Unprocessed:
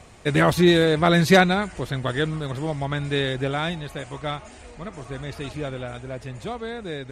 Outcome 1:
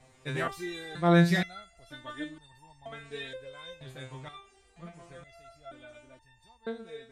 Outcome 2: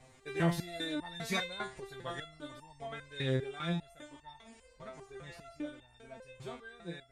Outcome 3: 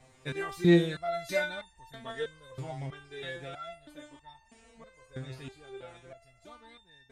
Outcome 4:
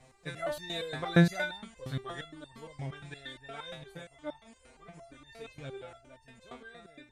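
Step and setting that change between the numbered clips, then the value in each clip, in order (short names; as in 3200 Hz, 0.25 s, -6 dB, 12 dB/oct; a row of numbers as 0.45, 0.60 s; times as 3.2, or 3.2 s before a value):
stepped resonator, rate: 2.1, 5, 3.1, 8.6 Hz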